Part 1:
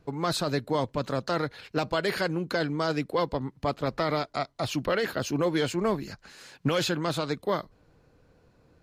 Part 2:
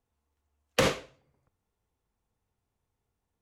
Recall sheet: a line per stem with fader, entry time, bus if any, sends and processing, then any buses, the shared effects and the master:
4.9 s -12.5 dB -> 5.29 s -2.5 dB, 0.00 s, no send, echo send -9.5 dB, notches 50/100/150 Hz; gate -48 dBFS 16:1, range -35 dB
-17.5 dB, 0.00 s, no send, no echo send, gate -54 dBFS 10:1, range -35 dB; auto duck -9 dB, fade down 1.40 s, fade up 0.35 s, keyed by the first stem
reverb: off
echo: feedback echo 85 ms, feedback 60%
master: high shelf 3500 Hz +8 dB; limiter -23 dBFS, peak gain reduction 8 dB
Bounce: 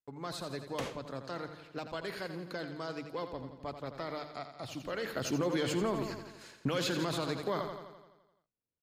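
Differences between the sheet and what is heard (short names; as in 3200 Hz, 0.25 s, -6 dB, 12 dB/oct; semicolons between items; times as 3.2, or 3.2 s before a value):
stem 2 -17.5 dB -> -10.5 dB; master: missing high shelf 3500 Hz +8 dB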